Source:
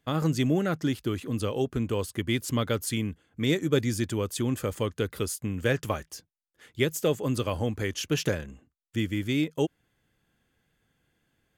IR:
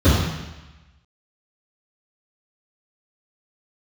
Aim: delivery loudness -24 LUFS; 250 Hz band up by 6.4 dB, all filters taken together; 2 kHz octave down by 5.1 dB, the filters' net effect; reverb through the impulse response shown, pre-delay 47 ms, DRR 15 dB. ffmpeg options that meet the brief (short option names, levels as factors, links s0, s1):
-filter_complex "[0:a]equalizer=f=250:t=o:g=8,equalizer=f=2000:t=o:g=-6.5,asplit=2[s0][s1];[1:a]atrim=start_sample=2205,adelay=47[s2];[s1][s2]afir=irnorm=-1:irlink=0,volume=0.0141[s3];[s0][s3]amix=inputs=2:normalize=0,volume=0.891"